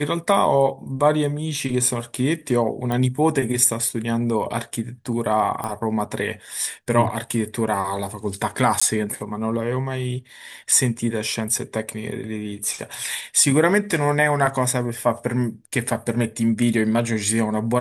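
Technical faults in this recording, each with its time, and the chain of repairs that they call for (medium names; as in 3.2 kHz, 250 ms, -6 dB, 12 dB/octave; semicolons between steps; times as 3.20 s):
2.92 s: pop
5.64 s: pop -15 dBFS
8.80–8.81 s: dropout 15 ms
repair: de-click; interpolate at 8.80 s, 15 ms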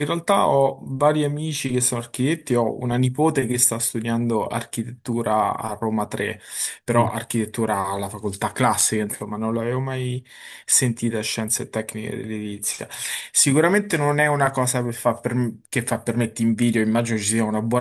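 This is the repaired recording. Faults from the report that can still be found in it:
nothing left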